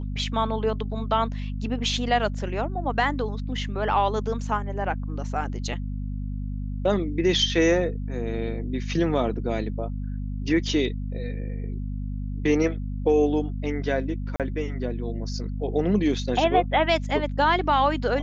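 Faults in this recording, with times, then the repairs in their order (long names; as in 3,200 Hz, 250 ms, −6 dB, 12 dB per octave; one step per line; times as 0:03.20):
mains hum 50 Hz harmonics 5 −30 dBFS
0:14.36–0:14.40: drop-out 37 ms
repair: hum removal 50 Hz, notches 5
repair the gap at 0:14.36, 37 ms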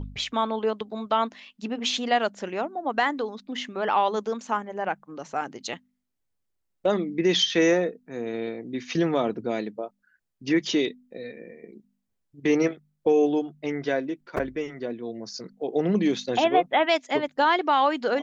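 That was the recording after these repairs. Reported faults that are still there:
none of them is left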